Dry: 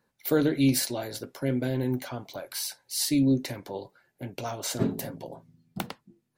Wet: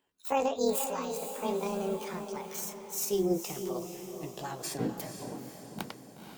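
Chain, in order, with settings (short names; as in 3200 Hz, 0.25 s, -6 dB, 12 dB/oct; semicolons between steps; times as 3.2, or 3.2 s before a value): gliding pitch shift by +10.5 st ending unshifted; diffused feedback echo 0.487 s, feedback 49%, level -8 dB; gain -4 dB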